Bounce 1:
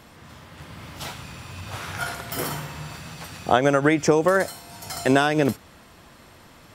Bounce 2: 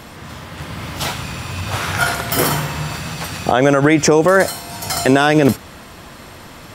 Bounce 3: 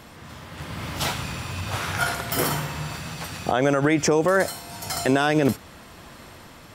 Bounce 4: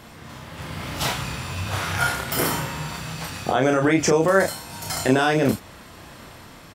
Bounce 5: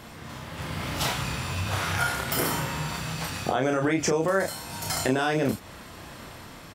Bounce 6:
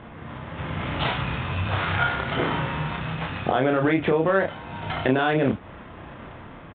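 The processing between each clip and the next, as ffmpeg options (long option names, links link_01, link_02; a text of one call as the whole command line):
ffmpeg -i in.wav -af "alimiter=level_in=13dB:limit=-1dB:release=50:level=0:latency=1,volume=-1dB" out.wav
ffmpeg -i in.wav -af "dynaudnorm=framelen=120:gausssize=11:maxgain=6.5dB,volume=-8.5dB" out.wav
ffmpeg -i in.wav -filter_complex "[0:a]asplit=2[link_01][link_02];[link_02]adelay=31,volume=-4dB[link_03];[link_01][link_03]amix=inputs=2:normalize=0" out.wav
ffmpeg -i in.wav -af "acompressor=threshold=-25dB:ratio=2" out.wav
ffmpeg -i in.wav -af "adynamicsmooth=sensitivity=7:basefreq=1800,aresample=8000,aresample=44100,volume=3.5dB" out.wav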